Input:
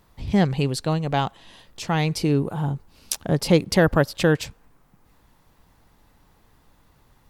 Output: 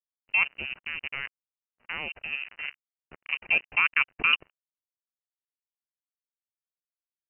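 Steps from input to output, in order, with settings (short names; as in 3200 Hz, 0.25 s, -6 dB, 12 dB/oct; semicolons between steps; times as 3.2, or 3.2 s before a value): HPF 200 Hz 12 dB/oct, from 4.33 s 40 Hz; level quantiser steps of 10 dB; crossover distortion -34 dBFS; inverted band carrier 2900 Hz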